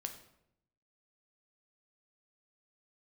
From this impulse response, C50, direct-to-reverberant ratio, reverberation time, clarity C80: 9.5 dB, 5.0 dB, 0.75 s, 12.0 dB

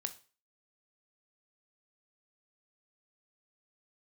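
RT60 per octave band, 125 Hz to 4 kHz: 0.35, 0.35, 0.40, 0.35, 0.35, 0.35 s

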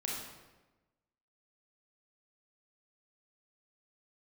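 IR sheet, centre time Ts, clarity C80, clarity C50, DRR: 70 ms, 3.0 dB, 0.0 dB, -3.5 dB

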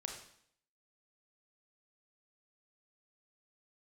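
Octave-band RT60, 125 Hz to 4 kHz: 0.70, 0.70, 0.65, 0.65, 0.65, 0.65 s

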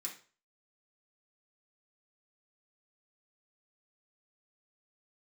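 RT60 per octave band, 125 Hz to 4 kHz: 0.40, 0.35, 0.40, 0.40, 0.35, 0.35 s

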